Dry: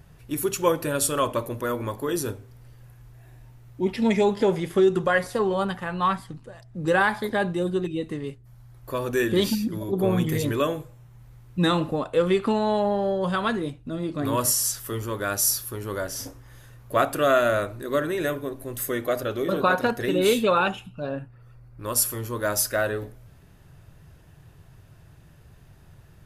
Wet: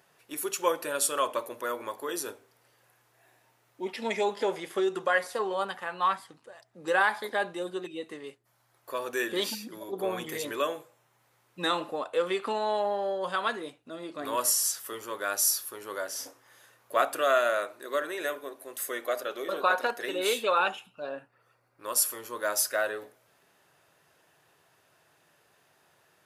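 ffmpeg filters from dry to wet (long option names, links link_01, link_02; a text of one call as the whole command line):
ffmpeg -i in.wav -filter_complex "[0:a]asettb=1/sr,asplit=3[link_01][link_02][link_03];[link_01]atrim=end=17.214[link_04];[link_02]atrim=start=17.21:end=20.59,asetpts=PTS-STARTPTS,afade=type=in:duration=0.004:curve=qsin,afade=type=out:start_time=3.376:duration=0.004:curve=qsin,equalizer=frequency=83:width_type=o:width=2:gain=-10.5[link_05];[link_03]atrim=start=20.586[link_06];[link_04][link_05]acrossfade=duration=0.004:curve1=hsin:curve2=qsin[link_07];[link_07][link_06]acrossfade=duration=0.004:curve1=qsin:curve2=hsin,highpass=510,equalizer=frequency=13000:width=6.9:gain=-6,volume=-2.5dB" out.wav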